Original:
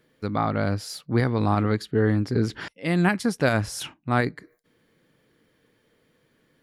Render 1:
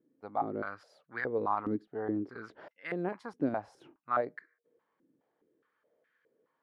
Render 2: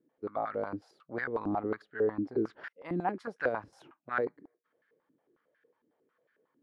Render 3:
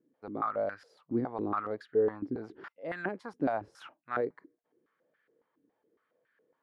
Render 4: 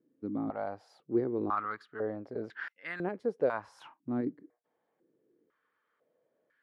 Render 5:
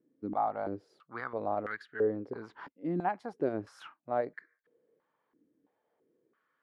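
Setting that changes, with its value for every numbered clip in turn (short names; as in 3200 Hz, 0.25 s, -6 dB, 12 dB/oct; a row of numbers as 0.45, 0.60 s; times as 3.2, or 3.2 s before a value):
stepped band-pass, rate: 4.8, 11, 7.2, 2, 3 Hz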